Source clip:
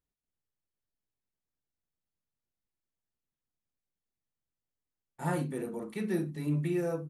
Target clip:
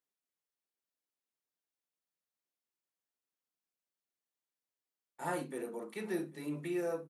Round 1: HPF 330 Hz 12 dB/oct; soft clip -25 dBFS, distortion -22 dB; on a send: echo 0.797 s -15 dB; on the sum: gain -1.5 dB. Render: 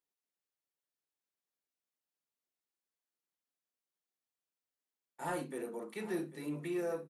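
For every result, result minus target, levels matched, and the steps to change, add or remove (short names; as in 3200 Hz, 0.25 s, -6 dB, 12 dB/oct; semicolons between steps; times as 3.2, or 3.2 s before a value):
soft clip: distortion +18 dB; echo-to-direct +7 dB
change: soft clip -14.5 dBFS, distortion -41 dB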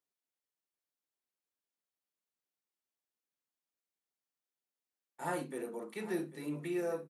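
echo-to-direct +7 dB
change: echo 0.797 s -22 dB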